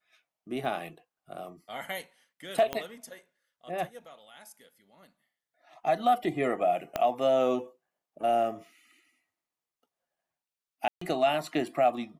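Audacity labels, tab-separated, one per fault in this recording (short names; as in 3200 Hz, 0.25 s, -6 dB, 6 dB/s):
0.650000	0.650000	gap 2.2 ms
2.730000	2.730000	pop -16 dBFS
6.960000	6.960000	pop -15 dBFS
10.880000	11.010000	gap 0.134 s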